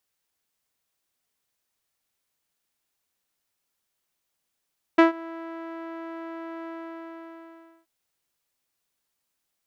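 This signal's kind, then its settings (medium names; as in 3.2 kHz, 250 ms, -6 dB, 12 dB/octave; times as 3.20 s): synth note saw E4 12 dB/octave, low-pass 1.5 kHz, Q 1.2, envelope 0.5 oct, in 0.09 s, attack 10 ms, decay 0.13 s, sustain -24 dB, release 1.19 s, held 1.69 s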